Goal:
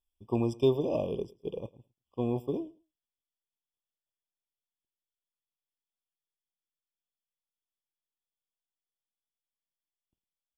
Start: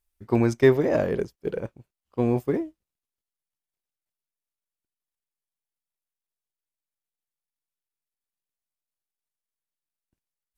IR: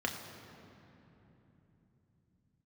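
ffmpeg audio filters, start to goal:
-filter_complex "[0:a]equalizer=frequency=3400:width=5.6:gain=11,asplit=2[link_01][link_02];[link_02]aecho=0:1:106|212:0.0794|0.0127[link_03];[link_01][link_03]amix=inputs=2:normalize=0,afftfilt=real='re*eq(mod(floor(b*sr/1024/1200),2),0)':imag='im*eq(mod(floor(b*sr/1024/1200),2),0)':win_size=1024:overlap=0.75,volume=-7.5dB"

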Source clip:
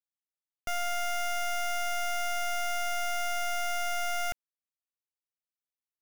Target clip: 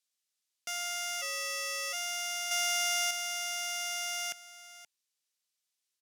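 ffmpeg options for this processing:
ffmpeg -i in.wav -filter_complex "[0:a]alimiter=level_in=16.5dB:limit=-24dB:level=0:latency=1,volume=-16.5dB,highpass=200,lowpass=5200,highshelf=frequency=2100:gain=11.5,bandreject=frequency=870:width=17,acrossover=split=1200[link_01][link_02];[link_01]crystalizer=i=3:c=0[link_03];[link_02]aemphasis=mode=production:type=riaa[link_04];[link_03][link_04]amix=inputs=2:normalize=0,aecho=1:1:526:0.168,asplit=3[link_05][link_06][link_07];[link_05]afade=type=out:start_time=1.21:duration=0.02[link_08];[link_06]afreqshift=-150,afade=type=in:start_time=1.21:duration=0.02,afade=type=out:start_time=1.92:duration=0.02[link_09];[link_07]afade=type=in:start_time=1.92:duration=0.02[link_10];[link_08][link_09][link_10]amix=inputs=3:normalize=0,asettb=1/sr,asplit=3[link_11][link_12][link_13];[link_11]atrim=end=2.514[link_14];[link_12]atrim=start=2.51:end=3.11,asetpts=PTS-STARTPTS,afade=type=in:duration=0.004:curve=qsin,afade=type=out:start_time=0.596:duration=0.004:curve=qsin,acontrast=36[link_15];[link_13]atrim=start=3.106[link_16];[link_14][link_15]acrossfade=duration=0.004:curve1=hsin:curve2=qsin[link_17];[link_17][link_16]acrossfade=duration=0.004:curve1=qsin:curve2=hsin,volume=-1dB" out.wav

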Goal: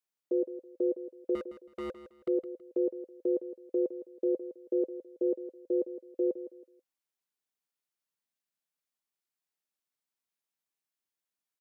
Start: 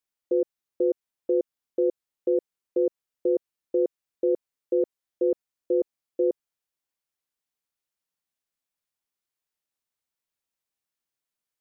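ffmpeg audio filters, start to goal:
ffmpeg -i in.wav -filter_complex "[0:a]highpass=frequency=130:width=0.5412,highpass=frequency=130:width=1.3066,bandreject=frequency=520:width=14,asettb=1/sr,asplit=3[link_01][link_02][link_03];[link_01]atrim=end=1.354[link_04];[link_02]atrim=start=1.35:end=2.28,asetpts=PTS-STARTPTS,afade=type=in:duration=0.004:curve=qsin,afade=type=out:start_time=0.926:duration=0.004:curve=qsin,volume=31dB,asoftclip=hard,volume=-31dB[link_05];[link_03]atrim=start=2.276[link_06];[link_04][link_05]acrossfade=duration=0.004:curve1=hsin:curve2=qsin[link_07];[link_07][link_06]acrossfade=duration=0.004:curve1=qsin:curve2=hsin,aecho=1:1:162|324|486:0.224|0.0627|0.0176,volume=-4dB" out.wav

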